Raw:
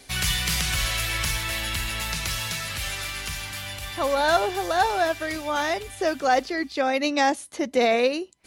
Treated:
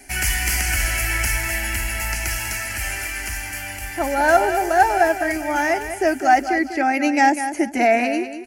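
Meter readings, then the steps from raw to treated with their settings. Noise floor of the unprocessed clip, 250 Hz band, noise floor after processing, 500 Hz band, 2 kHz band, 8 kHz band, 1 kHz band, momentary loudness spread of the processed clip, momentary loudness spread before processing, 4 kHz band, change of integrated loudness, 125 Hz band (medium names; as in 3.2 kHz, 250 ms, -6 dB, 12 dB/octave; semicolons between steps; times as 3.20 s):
-44 dBFS, +6.5 dB, -32 dBFS, +3.0 dB, +6.0 dB, +5.0 dB, +6.5 dB, 9 LU, 8 LU, -4.0 dB, +4.5 dB, +3.0 dB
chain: static phaser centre 750 Hz, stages 8; feedback delay 198 ms, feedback 26%, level -10 dB; trim +7 dB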